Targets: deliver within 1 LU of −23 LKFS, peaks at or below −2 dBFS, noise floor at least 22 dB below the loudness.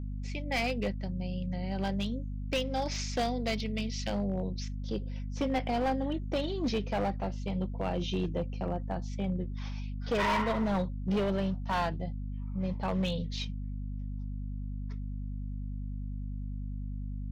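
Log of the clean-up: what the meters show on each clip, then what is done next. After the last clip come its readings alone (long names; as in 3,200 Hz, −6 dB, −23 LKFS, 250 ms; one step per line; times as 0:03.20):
share of clipped samples 2.1%; peaks flattened at −24.5 dBFS; mains hum 50 Hz; hum harmonics up to 250 Hz; level of the hum −34 dBFS; integrated loudness −34.0 LKFS; sample peak −24.5 dBFS; target loudness −23.0 LKFS
→ clipped peaks rebuilt −24.5 dBFS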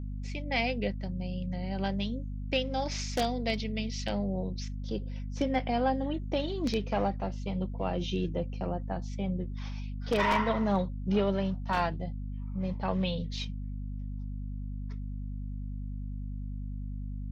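share of clipped samples 0.0%; mains hum 50 Hz; hum harmonics up to 250 Hz; level of the hum −34 dBFS
→ mains-hum notches 50/100/150/200/250 Hz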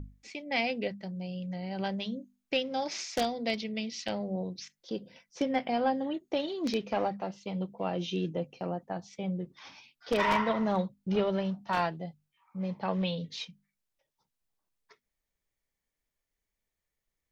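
mains hum none found; integrated loudness −33.0 LKFS; sample peak −14.5 dBFS; target loudness −23.0 LKFS
→ level +10 dB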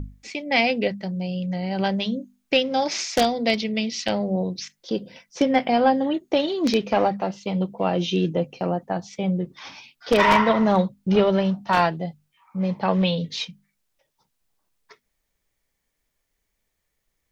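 integrated loudness −23.0 LKFS; sample peak −4.5 dBFS; background noise floor −77 dBFS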